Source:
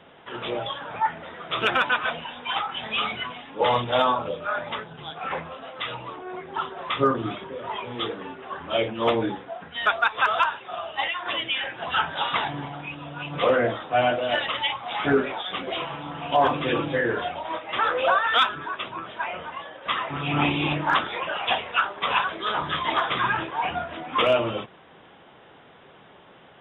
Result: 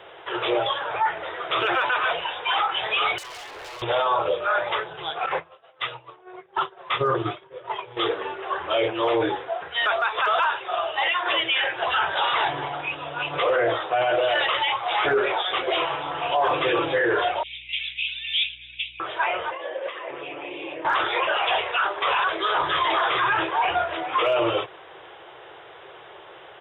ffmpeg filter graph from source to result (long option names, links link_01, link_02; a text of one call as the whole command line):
ffmpeg -i in.wav -filter_complex "[0:a]asettb=1/sr,asplit=3[link_01][link_02][link_03];[link_01]atrim=end=3.184[link_04];[link_02]atrim=start=3.18:end=3.82,asetpts=PTS-STARTPTS,afade=type=in:duration=0.004:curve=qsin,afade=type=out:start_time=0.636:duration=0.004:curve=qsin,highpass=170,acompressor=threshold=-35dB:ratio=10:attack=3.2:release=140:knee=1:detection=peak,aeval=exprs='0.01*(abs(mod(val(0)/0.01+3,4)-2)-1)':channel_layout=same[link_05];[link_03]atrim=start=3.816[link_06];[link_04][link_05]acrossfade=duration=0.004:curve1=hsin:curve2=qsin[link_07];[link_07][link_06]acrossfade=duration=0.004:curve1=qsin:curve2=hsin,asettb=1/sr,asplit=3[link_08][link_09][link_10];[link_08]atrim=end=5.264[link_11];[link_09]atrim=start=5.26:end=7.97,asetpts=PTS-STARTPTS,afade=type=in:duration=0.004:curve=qsin,afade=type=out:start_time=2.706:duration=0.004:curve=qsin,agate=range=-33dB:threshold=-26dB:ratio=3:release=100:detection=peak,equalizer=frequency=140:width_type=o:width=0.6:gain=10.5[link_12];[link_10]atrim=start=7.966[link_13];[link_11][link_12]acrossfade=duration=0.004:curve1=hsin:curve2=qsin[link_14];[link_14][link_13]acrossfade=duration=0.004:curve1=qsin:curve2=hsin,asettb=1/sr,asplit=3[link_15][link_16][link_17];[link_15]atrim=end=17.434[link_18];[link_16]atrim=start=17.43:end=19,asetpts=PTS-STARTPTS,afade=type=in:duration=0.004:curve=qsin,afade=type=out:start_time=1.566:duration=0.004:curve=qsin,asuperpass=centerf=3100:order=12:qfactor=1.5,aeval=exprs='val(0)+0.00178*(sin(2*PI*60*n/s)+sin(2*PI*2*60*n/s)/2+sin(2*PI*3*60*n/s)/3+sin(2*PI*4*60*n/s)/4+sin(2*PI*5*60*n/s)/5)':channel_layout=same[link_19];[link_17]atrim=start=18.996[link_20];[link_18][link_19]acrossfade=duration=0.004:curve1=hsin:curve2=qsin[link_21];[link_21][link_20]acrossfade=duration=0.004:curve1=qsin:curve2=hsin,asettb=1/sr,asplit=3[link_22][link_23][link_24];[link_22]atrim=end=19.514[link_25];[link_23]atrim=start=19.51:end=20.85,asetpts=PTS-STARTPTS,afade=type=in:duration=0.004:curve=qsin,afade=type=out:start_time=1.336:duration=0.004:curve=qsin,acompressor=threshold=-35dB:ratio=16:attack=3.2:release=140:knee=1:detection=peak,highpass=130,equalizer=frequency=150:width_type=q:width=4:gain=-10,equalizer=frequency=230:width_type=q:width=4:gain=6,equalizer=frequency=340:width_type=q:width=4:gain=5,equalizer=frequency=530:width_type=q:width=4:gain=10,equalizer=frequency=850:width_type=q:width=4:gain=-4,equalizer=frequency=1300:width_type=q:width=4:gain=-9,lowpass=frequency=3100:width=0.5412,lowpass=frequency=3100:width=1.3066[link_26];[link_24]atrim=start=20.846[link_27];[link_25][link_26]acrossfade=duration=0.004:curve1=hsin:curve2=qsin[link_28];[link_28][link_27]acrossfade=duration=0.004:curve1=qsin:curve2=hsin,acrossover=split=3400[link_29][link_30];[link_30]acompressor=threshold=-40dB:ratio=4:attack=1:release=60[link_31];[link_29][link_31]amix=inputs=2:normalize=0,firequalizer=gain_entry='entry(120,0);entry(240,-20);entry(340,8)':delay=0.05:min_phase=1,alimiter=limit=-13dB:level=0:latency=1:release=10,volume=-1dB" out.wav